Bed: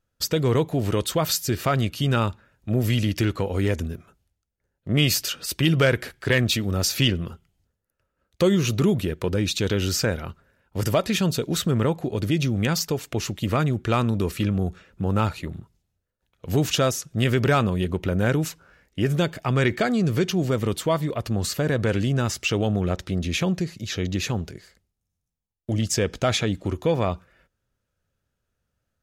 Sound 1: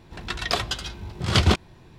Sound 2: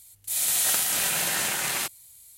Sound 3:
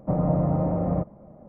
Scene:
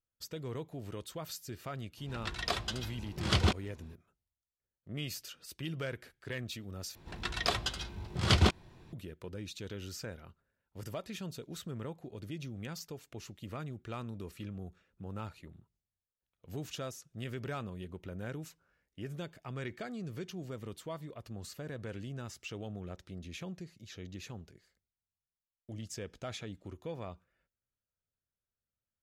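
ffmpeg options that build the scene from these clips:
-filter_complex "[1:a]asplit=2[a][b];[0:a]volume=-19.5dB,asplit=2[c][d];[c]atrim=end=6.954[e];[b]atrim=end=1.98,asetpts=PTS-STARTPTS,volume=-6.5dB[f];[d]atrim=start=8.926[g];[a]atrim=end=1.98,asetpts=PTS-STARTPTS,volume=-9dB,afade=t=in:d=0.004:c=hsin,afade=t=out:st=1.976:d=0.004:c=hsin,adelay=1970[h];[e][f]acrossfade=d=0.004:c1=hsin:c2=hsin[i];[i][g]acrossfade=d=0.004:c1=hsin:c2=hsin[j];[j][h]amix=inputs=2:normalize=0"

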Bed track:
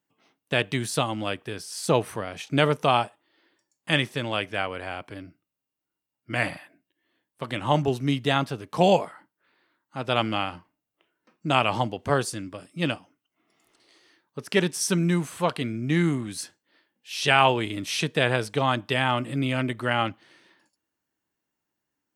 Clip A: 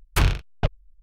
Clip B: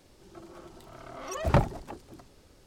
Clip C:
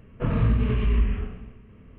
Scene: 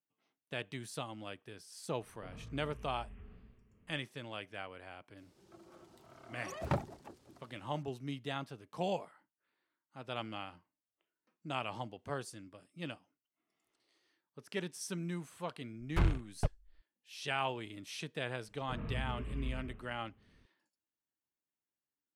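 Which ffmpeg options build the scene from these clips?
-filter_complex "[3:a]asplit=2[a][b];[0:a]volume=-16.5dB[c];[a]acompressor=threshold=-29dB:ratio=6:attack=3.2:release=140:knee=1:detection=peak[d];[2:a]highpass=87[e];[1:a]lowpass=f=1.2k:p=1[f];[d]atrim=end=1.98,asetpts=PTS-STARTPTS,volume=-18dB,afade=t=in:d=0.004:c=hsin,afade=t=out:st=1.976:d=0.004:c=hsin,adelay=2020[g];[e]atrim=end=2.66,asetpts=PTS-STARTPTS,volume=-10dB,afade=t=in:d=0.004:c=hsin,afade=t=out:st=2.656:d=0.004:c=hsin,adelay=227997S[h];[f]atrim=end=1.02,asetpts=PTS-STARTPTS,volume=-9.5dB,afade=t=in:d=0.004:c=hsin,afade=t=out:st=1.016:d=0.004:c=hsin,adelay=15800[i];[b]atrim=end=1.98,asetpts=PTS-STARTPTS,volume=-18dB,afade=t=in:d=0.004:c=hsin,afade=t=out:st=1.976:d=0.004:c=hsin,adelay=18480[j];[c][g][h][i][j]amix=inputs=5:normalize=0"

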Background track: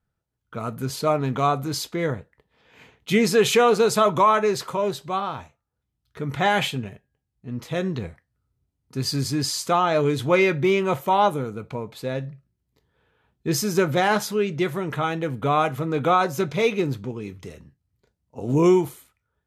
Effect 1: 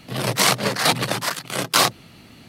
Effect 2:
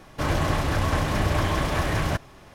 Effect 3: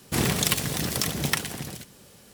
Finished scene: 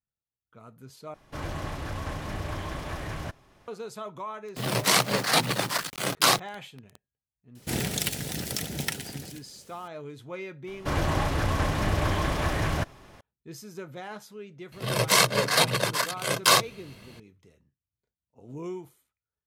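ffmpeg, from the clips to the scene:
-filter_complex "[2:a]asplit=2[a][b];[1:a]asplit=2[c][d];[0:a]volume=-19.5dB[e];[c]acrusher=bits=5:mix=0:aa=0.000001[f];[3:a]equalizer=f=1.1k:w=6:g=-13[g];[d]aecho=1:1:1.9:0.48[h];[e]asplit=2[i][j];[i]atrim=end=1.144[k];[a]atrim=end=2.54,asetpts=PTS-STARTPTS,volume=-10.5dB[l];[j]atrim=start=3.676[m];[f]atrim=end=2.48,asetpts=PTS-STARTPTS,volume=-4dB,afade=t=in:d=0.004:c=hsin,afade=t=out:st=2.476:d=0.004:c=hsin,adelay=4480[n];[g]atrim=end=2.33,asetpts=PTS-STARTPTS,volume=-5dB,afade=t=in:d=0.004:c=hsin,afade=t=out:st=2.326:d=0.004:c=hsin,adelay=7550[o];[b]atrim=end=2.54,asetpts=PTS-STARTPTS,volume=-2.5dB,afade=t=in:d=0.004:c=hsin,afade=t=out:st=2.536:d=0.004:c=hsin,adelay=10670[p];[h]atrim=end=2.48,asetpts=PTS-STARTPTS,volume=-3.5dB,afade=t=in:d=0.004:c=hsin,afade=t=out:st=2.476:d=0.004:c=hsin,adelay=14720[q];[k][l]acrossfade=d=0.004:c1=hsin:c2=hsin[r];[r][m]acrossfade=d=0.004:c1=hsin:c2=hsin[s];[s][n][o][p][q]amix=inputs=5:normalize=0"

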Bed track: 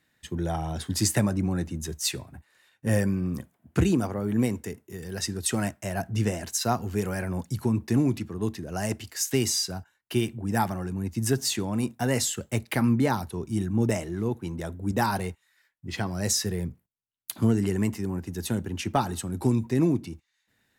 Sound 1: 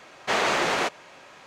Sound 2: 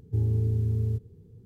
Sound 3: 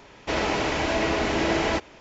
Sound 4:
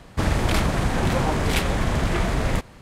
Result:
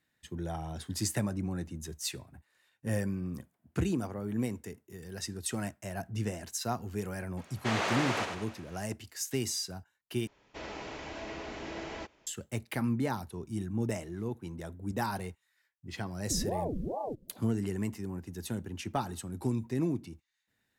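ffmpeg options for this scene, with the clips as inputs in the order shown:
-filter_complex "[0:a]volume=-8dB[a];[1:a]aecho=1:1:96|192|288|384|480|576:0.501|0.231|0.106|0.0488|0.0224|0.0103[b];[2:a]aeval=exprs='val(0)*sin(2*PI*410*n/s+410*0.85/2.4*sin(2*PI*2.4*n/s))':c=same[c];[a]asplit=2[d][e];[d]atrim=end=10.274[f];[3:a]atrim=end=2,asetpts=PTS-STARTPTS,volume=-17dB[g];[e]atrim=start=12.266[h];[b]atrim=end=1.46,asetpts=PTS-STARTPTS,volume=-9dB,afade=t=in:d=0.004:c=hsin,afade=t=out:st=1.456:d=0.004:c=hsin,adelay=7370[i];[c]atrim=end=1.45,asetpts=PTS-STARTPTS,volume=-6.5dB,afade=t=in:d=0.004:c=hsin,afade=t=out:st=1.446:d=0.004:c=hsin,adelay=16170[j];[f][g]acrossfade=d=0.004:c1=hsin:c2=hsin[k];[k][h]acrossfade=d=0.004:c1=hsin:c2=hsin[l];[l][i][j]amix=inputs=3:normalize=0"

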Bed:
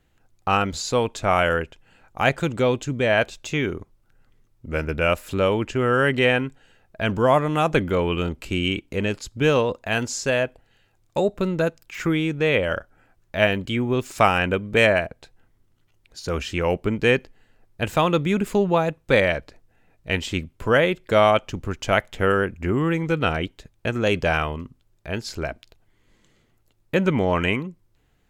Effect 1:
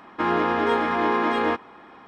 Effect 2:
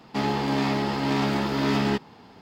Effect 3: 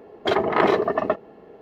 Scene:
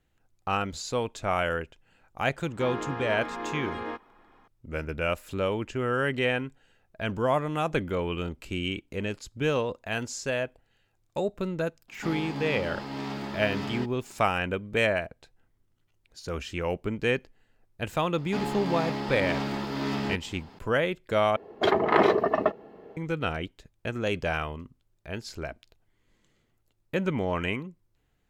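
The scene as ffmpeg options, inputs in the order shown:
-filter_complex "[2:a]asplit=2[a][b];[0:a]volume=-7.5dB[c];[b]acompressor=mode=upward:threshold=-36dB:ratio=2.5:attack=3.2:release=140:knee=2.83:detection=peak[d];[c]asplit=2[e][f];[e]atrim=end=21.364[g];[3:a]atrim=end=1.61,asetpts=PTS-STARTPTS,volume=-2dB[h];[f]atrim=start=22.966[i];[1:a]atrim=end=2.07,asetpts=PTS-STARTPTS,volume=-12.5dB,afade=t=in:d=0.004:c=hsin,afade=t=out:st=2.066:d=0.004:c=hsin,adelay=2410[j];[a]atrim=end=2.41,asetpts=PTS-STARTPTS,volume=-10.5dB,afade=t=in:d=0.004:c=hsin,afade=t=out:st=2.406:d=0.004:c=hsin,adelay=11880[k];[d]atrim=end=2.41,asetpts=PTS-STARTPTS,volume=-6.5dB,afade=t=in:d=0.004:c=hsin,afade=t=out:st=2.406:d=0.004:c=hsin,adelay=18180[l];[g][h]acrossfade=d=0.004:c1=hsin:c2=hsin[m];[m][i]acrossfade=d=0.004:c1=hsin:c2=hsin[n];[n][j][k][l]amix=inputs=4:normalize=0"

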